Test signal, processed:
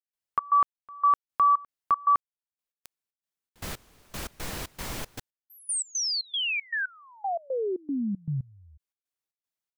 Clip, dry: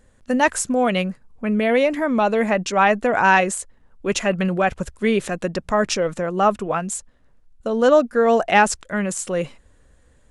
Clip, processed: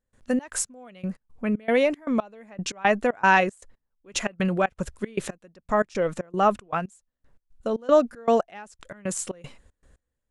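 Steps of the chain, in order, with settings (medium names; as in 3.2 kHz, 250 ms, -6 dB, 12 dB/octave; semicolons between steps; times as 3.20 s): trance gate ".xx.x...x.xx" 116 bpm -24 dB; trim -3 dB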